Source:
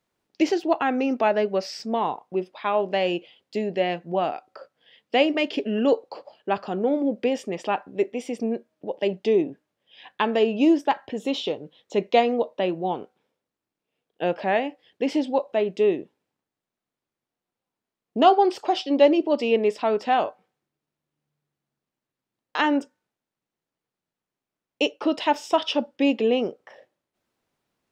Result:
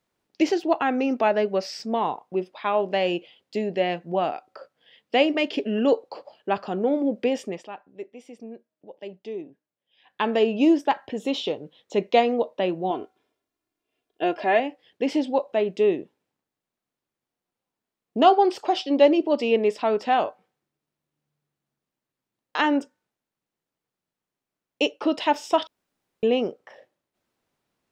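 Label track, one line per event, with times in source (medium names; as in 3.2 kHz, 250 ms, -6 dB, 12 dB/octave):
7.460000	10.270000	dip -13.5 dB, fades 0.21 s
12.900000	14.600000	comb 2.9 ms
25.670000	26.230000	room tone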